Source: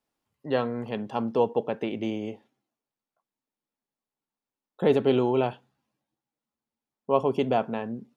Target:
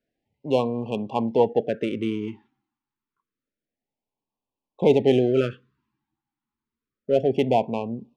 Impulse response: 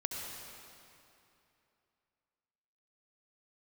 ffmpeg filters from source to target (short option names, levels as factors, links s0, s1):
-af "asubboost=boost=2:cutoff=99,adynamicsmooth=sensitivity=5.5:basefreq=3100,afftfilt=real='re*(1-between(b*sr/1024,530*pow(1700/530,0.5+0.5*sin(2*PI*0.28*pts/sr))/1.41,530*pow(1700/530,0.5+0.5*sin(2*PI*0.28*pts/sr))*1.41))':imag='im*(1-between(b*sr/1024,530*pow(1700/530,0.5+0.5*sin(2*PI*0.28*pts/sr))/1.41,530*pow(1700/530,0.5+0.5*sin(2*PI*0.28*pts/sr))*1.41))':win_size=1024:overlap=0.75,volume=1.68"